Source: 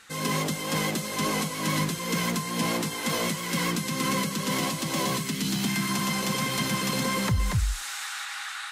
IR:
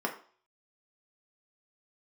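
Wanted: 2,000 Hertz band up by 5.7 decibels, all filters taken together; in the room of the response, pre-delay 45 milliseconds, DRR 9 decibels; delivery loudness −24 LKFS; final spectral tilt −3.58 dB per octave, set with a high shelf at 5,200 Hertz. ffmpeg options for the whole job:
-filter_complex "[0:a]equalizer=frequency=2000:width_type=o:gain=7,highshelf=frequency=5200:gain=-4,asplit=2[link_01][link_02];[1:a]atrim=start_sample=2205,adelay=45[link_03];[link_02][link_03]afir=irnorm=-1:irlink=0,volume=-16dB[link_04];[link_01][link_04]amix=inputs=2:normalize=0,volume=1.5dB"

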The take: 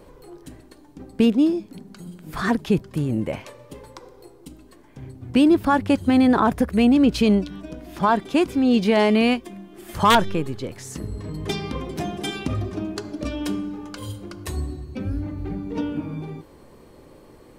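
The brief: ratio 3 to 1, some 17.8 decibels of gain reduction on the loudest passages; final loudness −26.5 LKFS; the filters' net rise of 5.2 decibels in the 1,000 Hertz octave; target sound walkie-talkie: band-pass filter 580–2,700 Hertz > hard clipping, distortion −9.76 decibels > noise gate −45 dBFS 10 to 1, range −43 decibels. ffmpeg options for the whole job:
ffmpeg -i in.wav -af "equalizer=frequency=1000:width_type=o:gain=7,acompressor=threshold=-32dB:ratio=3,highpass=580,lowpass=2700,asoftclip=type=hard:threshold=-30dB,agate=range=-43dB:threshold=-45dB:ratio=10,volume=14.5dB" out.wav

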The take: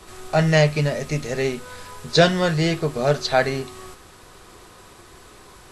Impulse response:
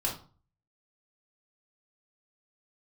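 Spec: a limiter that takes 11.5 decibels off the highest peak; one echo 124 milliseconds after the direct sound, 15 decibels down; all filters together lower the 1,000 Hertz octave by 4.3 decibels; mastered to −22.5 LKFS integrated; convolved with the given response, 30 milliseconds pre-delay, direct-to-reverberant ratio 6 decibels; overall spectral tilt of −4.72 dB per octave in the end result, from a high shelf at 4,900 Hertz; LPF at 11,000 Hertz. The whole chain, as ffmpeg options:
-filter_complex "[0:a]lowpass=11000,equalizer=frequency=1000:width_type=o:gain=-7.5,highshelf=frequency=4900:gain=8.5,alimiter=limit=-15.5dB:level=0:latency=1,aecho=1:1:124:0.178,asplit=2[link_01][link_02];[1:a]atrim=start_sample=2205,adelay=30[link_03];[link_02][link_03]afir=irnorm=-1:irlink=0,volume=-11.5dB[link_04];[link_01][link_04]amix=inputs=2:normalize=0,volume=2.5dB"

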